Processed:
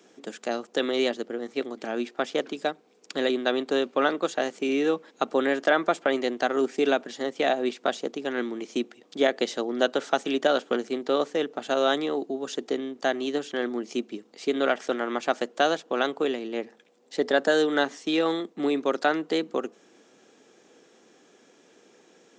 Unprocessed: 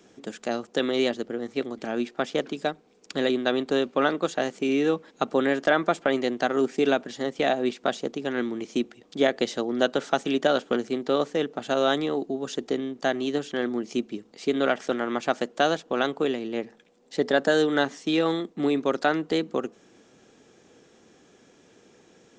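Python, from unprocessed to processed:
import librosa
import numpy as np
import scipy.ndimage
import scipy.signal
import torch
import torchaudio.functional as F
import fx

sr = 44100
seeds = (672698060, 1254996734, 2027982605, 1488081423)

y = scipy.signal.sosfilt(scipy.signal.butter(2, 250.0, 'highpass', fs=sr, output='sos'), x)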